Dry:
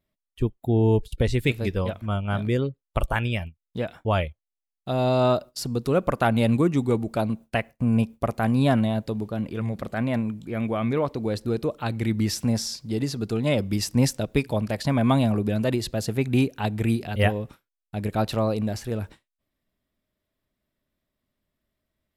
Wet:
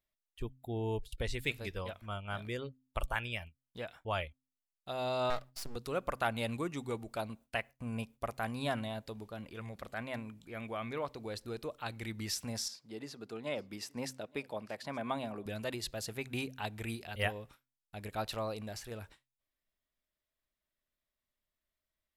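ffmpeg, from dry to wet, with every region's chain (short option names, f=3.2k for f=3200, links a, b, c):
-filter_complex "[0:a]asettb=1/sr,asplit=3[a][b][c];[a]atrim=end=5.304[d];[b]atrim=start=5.3:end=5.76,asetpts=PTS-STARTPTS,afade=t=in:d=0.004:c=qsin,afade=t=out:st=0.456:d=0.004:c=qsin,lowshelf=f=100:t=q:w=3:g=-13,aeval=exprs='max(val(0),0)':c=same[e];[c]atrim=start=5.756[f];[d][e]acrossfade=d=0.004:c1=hsin:c2=qsin[g];[g][f]acrossfade=d=0.004:c1=qsin:c2=hsin,asettb=1/sr,asplit=3[h][i][j];[h]atrim=end=12.684[k];[i]atrim=start=12.68:end=15.46,asetpts=PTS-STARTPTS,afade=t=in:d=0.004:c=qsin,afade=t=out:st=2.776:d=0.004:c=qsin,highpass=190,highshelf=f=2.8k:g=-10.5,aecho=1:1:872:0.0668,atrim=end_sample=122598[l];[j]atrim=start=15.456[m];[k][l]acrossfade=d=0.004:c1=hsin:c2=qsin[n];[n][m]acrossfade=d=0.004:c1=qsin:c2=hsin,equalizer=f=180:w=0.36:g=-12.5,bandreject=f=130:t=h:w=4,bandreject=f=260:t=h:w=4,volume=-6.5dB"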